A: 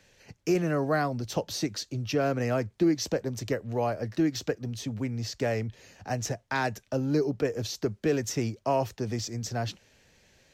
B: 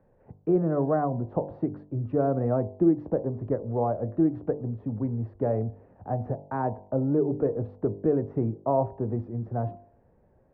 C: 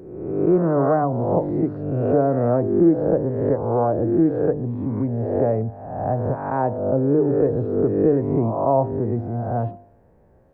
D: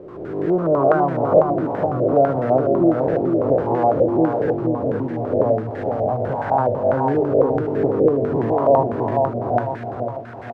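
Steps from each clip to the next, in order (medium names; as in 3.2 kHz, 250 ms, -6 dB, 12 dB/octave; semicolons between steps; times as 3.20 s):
low-pass 1 kHz 24 dB/octave; de-hum 49.71 Hz, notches 21; trim +3 dB
reverse spectral sustain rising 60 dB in 1.11 s; trim +4.5 dB
zero-crossing glitches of -19 dBFS; feedback delay 459 ms, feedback 48%, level -4.5 dB; step-sequenced low-pass 12 Hz 580–1700 Hz; trim -3.5 dB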